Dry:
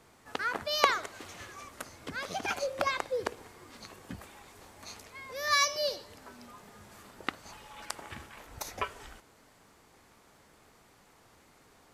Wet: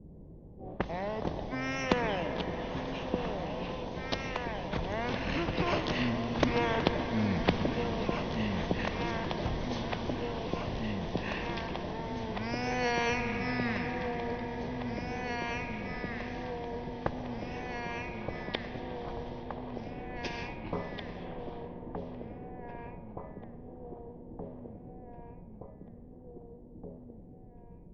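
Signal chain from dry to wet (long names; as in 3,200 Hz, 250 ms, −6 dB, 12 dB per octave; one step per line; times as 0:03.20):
sub-octave generator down 1 octave, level +1 dB
source passing by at 0:03.47, 9 m/s, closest 9 metres
high-shelf EQ 2,500 Hz −11.5 dB
delay that swaps between a low-pass and a high-pass 522 ms, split 1,500 Hz, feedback 74%, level −7 dB
on a send at −12 dB: convolution reverb RT60 3.6 s, pre-delay 15 ms
on the sum: low-pass that shuts in the quiet parts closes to 720 Hz, open at −51 dBFS
thirty-one-band graphic EQ 400 Hz +6 dB, 3,150 Hz −10 dB, 8,000 Hz +4 dB
wrong playback speed 78 rpm record played at 33 rpm
every bin compressed towards the loudest bin 2 to 1
level +7.5 dB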